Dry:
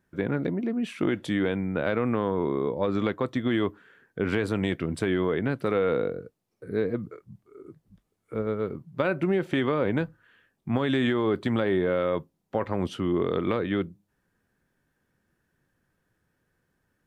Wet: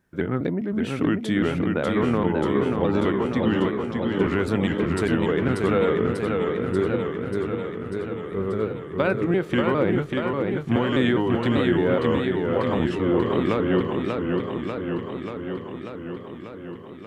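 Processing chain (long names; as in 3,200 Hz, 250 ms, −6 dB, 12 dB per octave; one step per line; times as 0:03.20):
pitch shifter gated in a rhythm −2 semitones, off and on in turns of 203 ms
feedback echo with a swinging delay time 589 ms, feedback 71%, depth 120 cents, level −4 dB
level +3 dB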